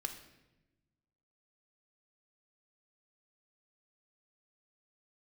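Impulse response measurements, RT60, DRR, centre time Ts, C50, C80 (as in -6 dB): 1.0 s, 6.0 dB, 17 ms, 9.0 dB, 11.5 dB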